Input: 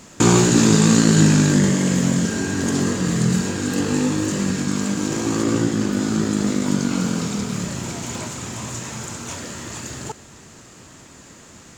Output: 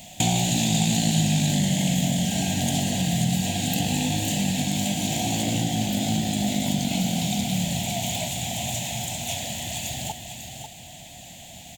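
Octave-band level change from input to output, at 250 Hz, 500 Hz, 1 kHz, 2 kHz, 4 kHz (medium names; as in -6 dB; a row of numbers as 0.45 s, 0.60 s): -6.5 dB, -9.0 dB, -1.5 dB, -5.0 dB, +2.5 dB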